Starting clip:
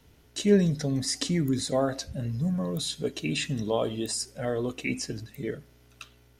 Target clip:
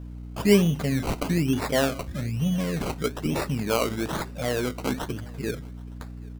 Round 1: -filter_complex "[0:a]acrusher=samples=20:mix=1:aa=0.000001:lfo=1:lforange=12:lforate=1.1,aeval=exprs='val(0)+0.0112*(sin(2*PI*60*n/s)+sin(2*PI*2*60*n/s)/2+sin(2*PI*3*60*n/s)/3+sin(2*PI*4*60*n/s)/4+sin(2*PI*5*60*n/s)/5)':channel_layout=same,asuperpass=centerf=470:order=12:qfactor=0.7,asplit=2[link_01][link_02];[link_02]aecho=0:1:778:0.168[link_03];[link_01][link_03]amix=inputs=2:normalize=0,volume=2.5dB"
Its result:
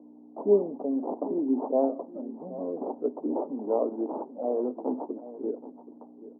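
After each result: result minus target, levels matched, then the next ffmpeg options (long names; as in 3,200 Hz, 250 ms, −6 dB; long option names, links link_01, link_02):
echo-to-direct +10 dB; 500 Hz band +4.0 dB
-filter_complex "[0:a]acrusher=samples=20:mix=1:aa=0.000001:lfo=1:lforange=12:lforate=1.1,aeval=exprs='val(0)+0.0112*(sin(2*PI*60*n/s)+sin(2*PI*2*60*n/s)/2+sin(2*PI*3*60*n/s)/3+sin(2*PI*4*60*n/s)/4+sin(2*PI*5*60*n/s)/5)':channel_layout=same,asuperpass=centerf=470:order=12:qfactor=0.7,asplit=2[link_01][link_02];[link_02]aecho=0:1:778:0.0531[link_03];[link_01][link_03]amix=inputs=2:normalize=0,volume=2.5dB"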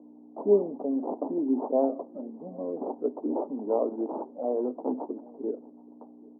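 500 Hz band +4.0 dB
-filter_complex "[0:a]acrusher=samples=20:mix=1:aa=0.000001:lfo=1:lforange=12:lforate=1.1,aeval=exprs='val(0)+0.0112*(sin(2*PI*60*n/s)+sin(2*PI*2*60*n/s)/2+sin(2*PI*3*60*n/s)/3+sin(2*PI*4*60*n/s)/4+sin(2*PI*5*60*n/s)/5)':channel_layout=same,asplit=2[link_01][link_02];[link_02]aecho=0:1:778:0.0531[link_03];[link_01][link_03]amix=inputs=2:normalize=0,volume=2.5dB"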